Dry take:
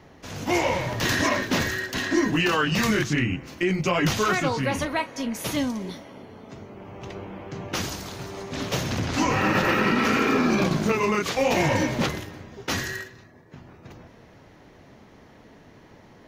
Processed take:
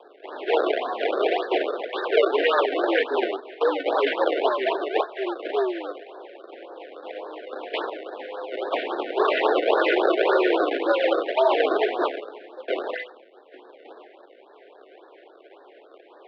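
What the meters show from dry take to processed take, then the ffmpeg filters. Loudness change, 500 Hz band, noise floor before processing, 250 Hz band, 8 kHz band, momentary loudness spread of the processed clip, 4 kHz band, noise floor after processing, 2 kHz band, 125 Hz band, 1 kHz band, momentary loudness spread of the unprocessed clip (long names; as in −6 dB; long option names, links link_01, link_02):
+0.5 dB, +6.0 dB, −51 dBFS, −5.5 dB, below −30 dB, 18 LU, −2.5 dB, −51 dBFS, −3.0 dB, below −40 dB, +1.5 dB, 17 LU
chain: -af "acrusher=samples=32:mix=1:aa=0.000001:lfo=1:lforange=51.2:lforate=1.9,highpass=frequency=250:width_type=q:width=0.5412,highpass=frequency=250:width_type=q:width=1.307,lowpass=frequency=3300:width_type=q:width=0.5176,lowpass=frequency=3300:width_type=q:width=0.7071,lowpass=frequency=3300:width_type=q:width=1.932,afreqshift=120,afftfilt=real='re*(1-between(b*sr/1024,990*pow(2600/990,0.5+0.5*sin(2*PI*3.6*pts/sr))/1.41,990*pow(2600/990,0.5+0.5*sin(2*PI*3.6*pts/sr))*1.41))':imag='im*(1-between(b*sr/1024,990*pow(2600/990,0.5+0.5*sin(2*PI*3.6*pts/sr))/1.41,990*pow(2600/990,0.5+0.5*sin(2*PI*3.6*pts/sr))*1.41))':win_size=1024:overlap=0.75,volume=4dB"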